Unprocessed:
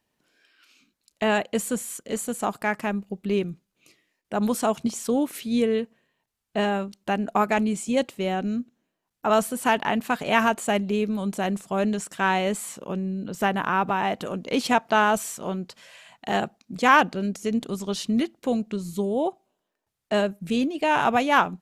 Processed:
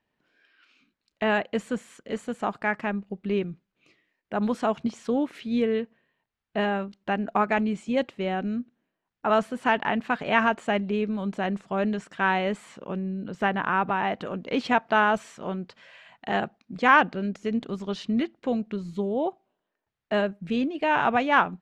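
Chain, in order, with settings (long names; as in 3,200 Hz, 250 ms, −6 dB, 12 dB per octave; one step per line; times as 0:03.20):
low-pass filter 3,400 Hz 12 dB per octave
parametric band 1,700 Hz +3 dB 0.77 octaves
level −2 dB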